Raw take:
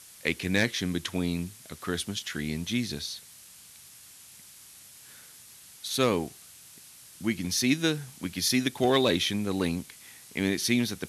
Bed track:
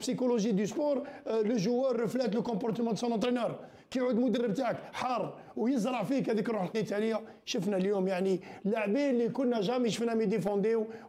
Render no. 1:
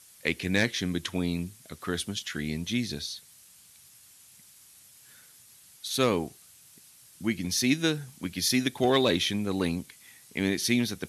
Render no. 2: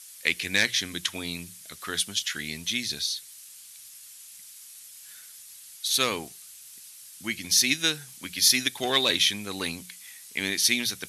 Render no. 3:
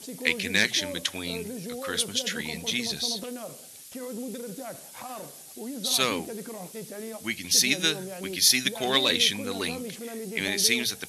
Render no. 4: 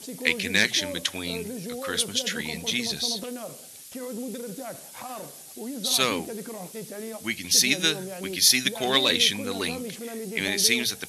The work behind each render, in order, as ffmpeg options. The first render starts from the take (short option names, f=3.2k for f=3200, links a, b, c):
-af "afftdn=nr=6:nf=-51"
-af "tiltshelf=f=1.1k:g=-8.5,bandreject=f=60:t=h:w=6,bandreject=f=120:t=h:w=6,bandreject=f=180:t=h:w=6"
-filter_complex "[1:a]volume=-7.5dB[a];[0:a][a]amix=inputs=2:normalize=0"
-af "volume=1.5dB"